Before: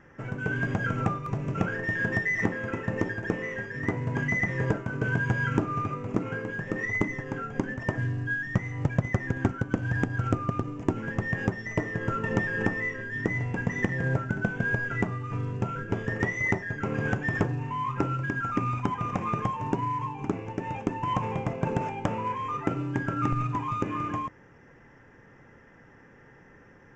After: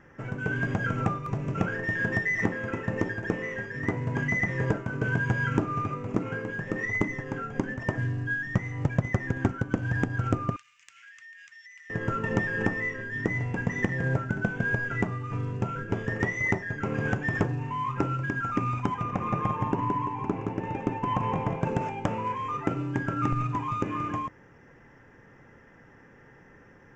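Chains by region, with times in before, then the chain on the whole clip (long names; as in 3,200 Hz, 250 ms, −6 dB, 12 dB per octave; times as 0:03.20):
0:10.56–0:11.90: inverse Chebyshev high-pass filter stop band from 760 Hz, stop band 50 dB + downward compressor 5 to 1, threshold −47 dBFS
0:19.03–0:21.61: high-shelf EQ 4,200 Hz −10 dB + repeating echo 170 ms, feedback 36%, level −4 dB
whole clip: no processing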